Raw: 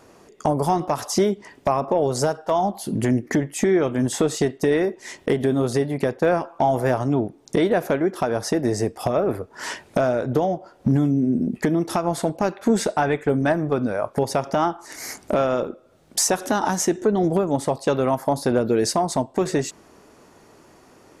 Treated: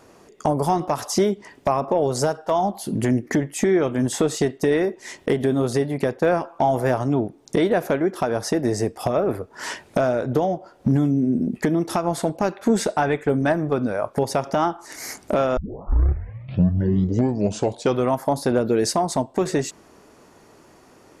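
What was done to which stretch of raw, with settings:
0:15.57: tape start 2.57 s

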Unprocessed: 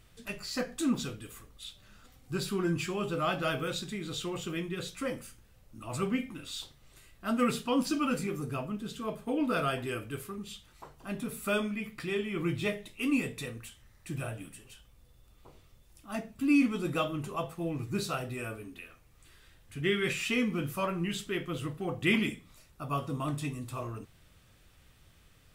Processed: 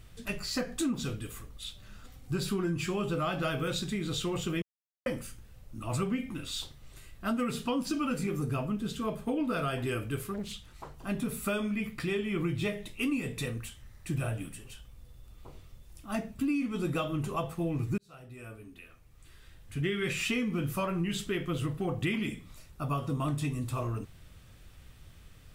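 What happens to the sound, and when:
0:04.62–0:05.06: silence
0:10.34–0:10.94: highs frequency-modulated by the lows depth 0.8 ms
0:17.98–0:19.96: fade in
whole clip: low-shelf EQ 160 Hz +7 dB; downward compressor 12 to 1, threshold −30 dBFS; level +3 dB

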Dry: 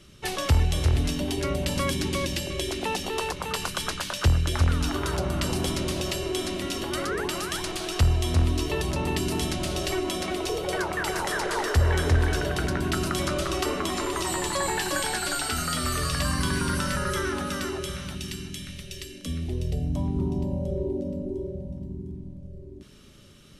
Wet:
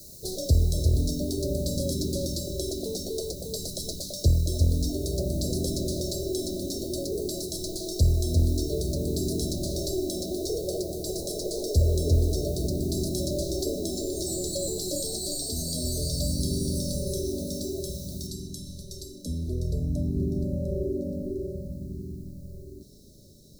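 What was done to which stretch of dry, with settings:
0:18.27: noise floor change −46 dB −63 dB
whole clip: Chebyshev band-stop filter 640–4,000 Hz, order 5

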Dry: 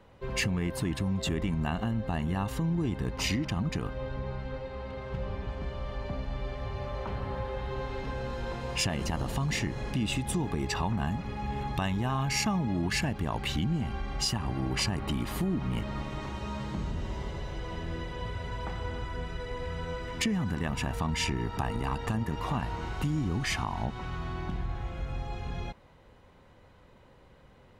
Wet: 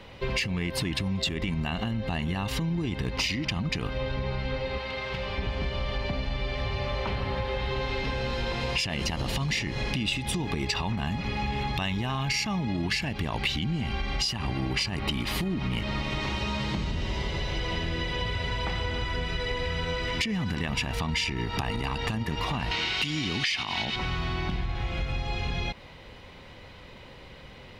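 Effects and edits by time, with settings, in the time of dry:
0:04.78–0:05.38: low-shelf EQ 490 Hz −10.5 dB
0:22.71–0:23.96: meter weighting curve D
whole clip: brickwall limiter −22.5 dBFS; flat-topped bell 3,300 Hz +9 dB; downward compressor, threshold −35 dBFS; level +9 dB

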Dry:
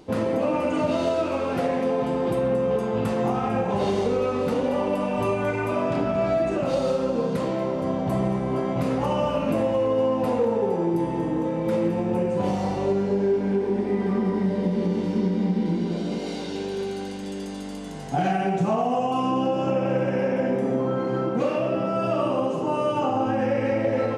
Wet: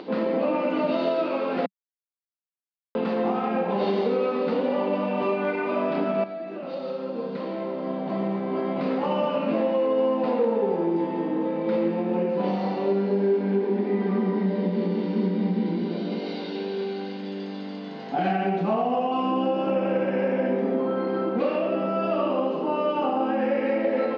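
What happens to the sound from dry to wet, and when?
0:01.66–0:02.95: silence
0:06.24–0:08.85: fade in, from −12.5 dB
whole clip: Chebyshev band-pass filter 190–4,500 Hz, order 4; upward compression, threshold −32 dBFS

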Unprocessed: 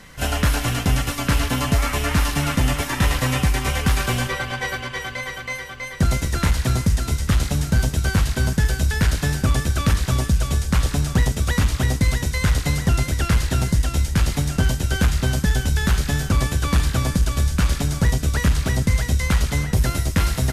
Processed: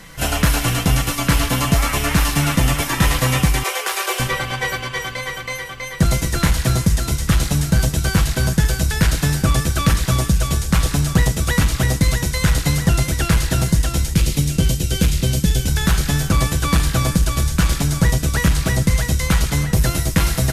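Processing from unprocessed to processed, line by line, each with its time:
0:03.63–0:04.20: elliptic high-pass filter 370 Hz
0:14.13–0:15.68: flat-topped bell 1,100 Hz −9.5 dB
whole clip: high-shelf EQ 8,500 Hz +5 dB; comb filter 6.1 ms, depth 36%; level +3 dB

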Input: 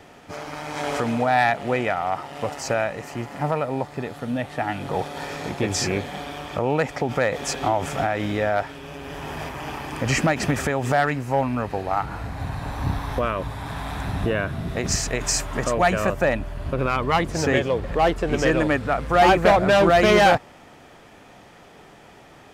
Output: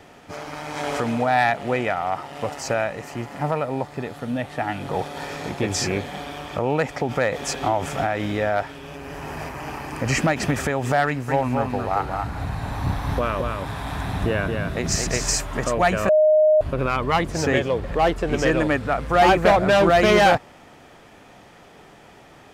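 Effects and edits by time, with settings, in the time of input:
0:08.96–0:10.15: parametric band 3,400 Hz −9.5 dB 0.25 octaves
0:11.06–0:15.35: single-tap delay 222 ms −4.5 dB
0:16.09–0:16.61: beep over 617 Hz −12 dBFS

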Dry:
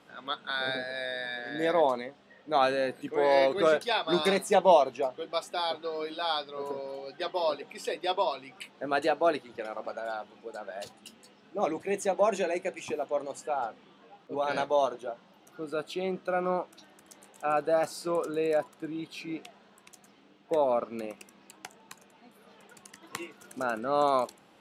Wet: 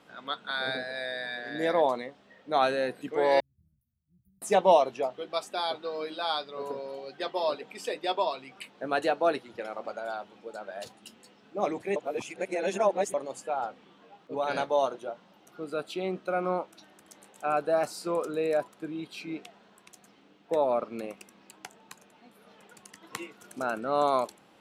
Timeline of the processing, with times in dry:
0:03.40–0:04.42: inverse Chebyshev band-stop filter 440–6,000 Hz, stop band 80 dB
0:11.96–0:13.14: reverse

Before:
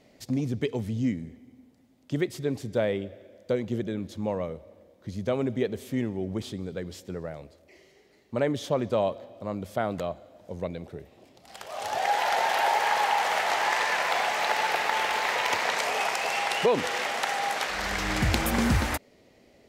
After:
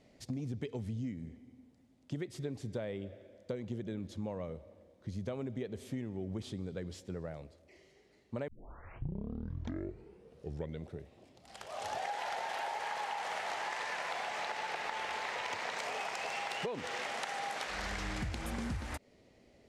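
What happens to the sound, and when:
0:08.48: tape start 2.45 s
0:14.25–0:17.02: bad sample-rate conversion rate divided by 2×, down filtered, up hold
whole clip: low-pass filter 11,000 Hz 24 dB per octave; low-shelf EQ 150 Hz +6.5 dB; downward compressor 10 to 1, threshold −28 dBFS; level −6.5 dB

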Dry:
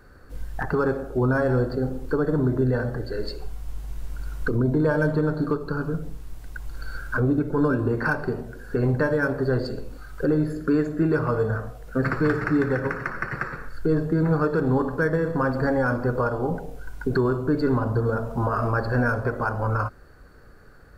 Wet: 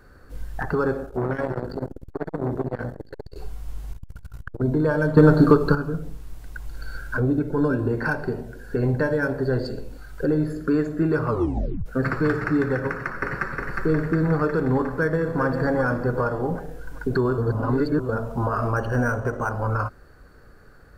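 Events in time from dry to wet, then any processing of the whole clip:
0:01.05–0:03.36: saturating transformer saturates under 440 Hz
0:03.93–0:04.62: saturating transformer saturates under 280 Hz
0:05.17–0:05.75: clip gain +10 dB
0:06.67–0:10.43: parametric band 1,200 Hz −9.5 dB 0.2 octaves
0:11.29: tape stop 0.57 s
0:12.86–0:13.57: delay throw 360 ms, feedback 65%, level −3 dB
0:14.88–0:15.42: delay throw 390 ms, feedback 55%, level −8 dB
0:17.38–0:18.09: reverse
0:18.76–0:19.51: linearly interpolated sample-rate reduction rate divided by 6×

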